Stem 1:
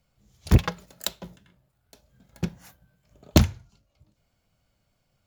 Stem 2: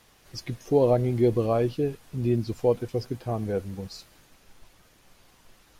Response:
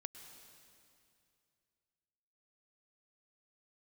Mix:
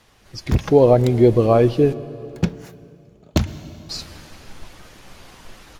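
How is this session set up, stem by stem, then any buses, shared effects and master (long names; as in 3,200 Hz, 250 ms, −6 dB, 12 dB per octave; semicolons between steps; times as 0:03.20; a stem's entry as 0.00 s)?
+2.5 dB, 0.00 s, send −15.5 dB, automatic ducking −23 dB, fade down 1.45 s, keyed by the second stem
+1.0 dB, 0.00 s, muted 0:01.93–0:03.89, send −3.5 dB, no processing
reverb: on, RT60 2.5 s, pre-delay 98 ms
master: high-shelf EQ 9,900 Hz −11 dB; automatic gain control gain up to 11 dB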